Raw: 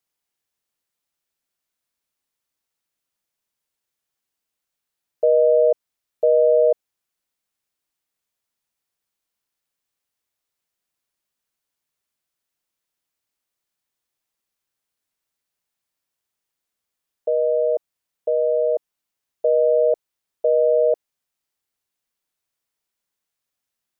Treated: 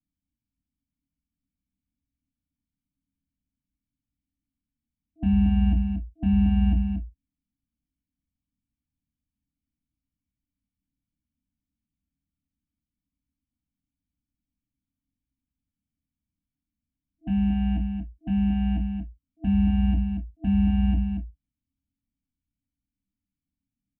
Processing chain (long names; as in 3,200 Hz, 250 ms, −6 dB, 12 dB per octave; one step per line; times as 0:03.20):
leveller curve on the samples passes 3
brick-wall band-stop 320–660 Hz
brickwall limiter −19 dBFS, peak gain reduction 4 dB
formant resonators in series i
spectral tilt −5 dB per octave
single-tap delay 233 ms −7.5 dB
on a send at −8 dB: convolution reverb RT60 0.10 s, pre-delay 22 ms
on the sum: level +9 dB